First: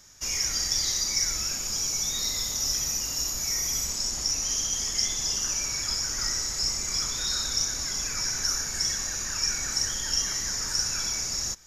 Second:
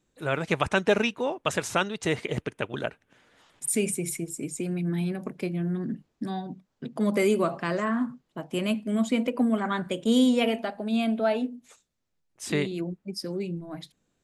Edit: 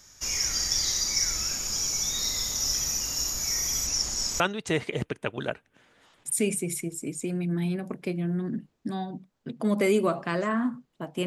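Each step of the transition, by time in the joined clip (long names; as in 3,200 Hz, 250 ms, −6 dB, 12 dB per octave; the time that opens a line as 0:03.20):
first
0:03.87–0:04.40: reverse
0:04.40: continue with second from 0:01.76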